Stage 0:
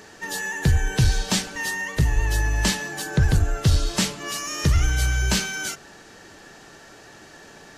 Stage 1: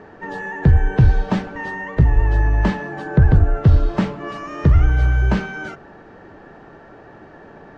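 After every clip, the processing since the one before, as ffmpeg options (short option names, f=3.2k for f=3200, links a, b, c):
-af "lowpass=1.2k,volume=6.5dB"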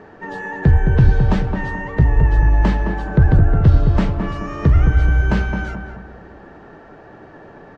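-filter_complex "[0:a]asplit=2[a][b];[b]adelay=215,lowpass=f=1.4k:p=1,volume=-5dB,asplit=2[c][d];[d]adelay=215,lowpass=f=1.4k:p=1,volume=0.46,asplit=2[e][f];[f]adelay=215,lowpass=f=1.4k:p=1,volume=0.46,asplit=2[g][h];[h]adelay=215,lowpass=f=1.4k:p=1,volume=0.46,asplit=2[i][j];[j]adelay=215,lowpass=f=1.4k:p=1,volume=0.46,asplit=2[k][l];[l]adelay=215,lowpass=f=1.4k:p=1,volume=0.46[m];[a][c][e][g][i][k][m]amix=inputs=7:normalize=0"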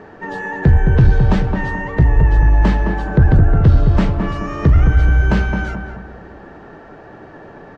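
-af "asoftclip=type=tanh:threshold=-4.5dB,volume=3dB"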